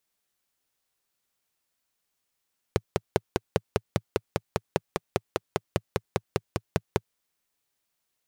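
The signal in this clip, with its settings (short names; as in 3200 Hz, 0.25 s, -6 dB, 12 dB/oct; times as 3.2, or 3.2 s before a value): single-cylinder engine model, steady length 4.32 s, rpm 600, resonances 110/160/390 Hz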